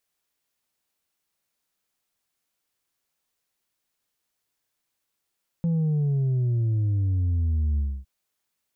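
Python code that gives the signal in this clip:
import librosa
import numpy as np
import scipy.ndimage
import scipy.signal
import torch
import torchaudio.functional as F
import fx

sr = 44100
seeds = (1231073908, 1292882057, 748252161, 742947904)

y = fx.sub_drop(sr, level_db=-21.0, start_hz=170.0, length_s=2.41, drive_db=3.0, fade_s=0.27, end_hz=65.0)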